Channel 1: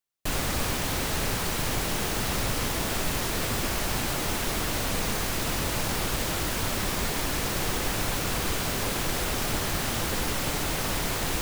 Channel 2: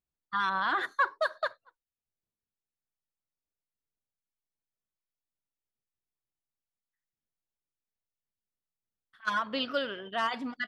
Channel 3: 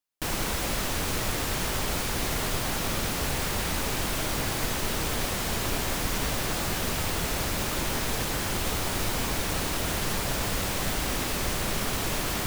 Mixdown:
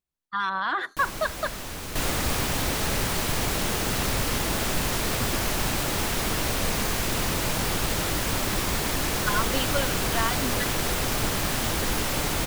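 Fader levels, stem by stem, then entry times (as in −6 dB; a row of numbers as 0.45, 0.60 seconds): +1.5, +2.0, −6.5 decibels; 1.70, 0.00, 0.75 seconds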